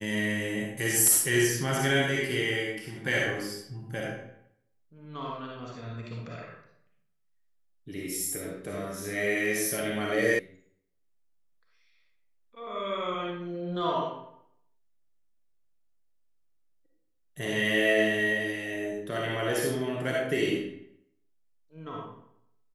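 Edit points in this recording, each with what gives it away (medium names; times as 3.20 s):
10.39 s: sound stops dead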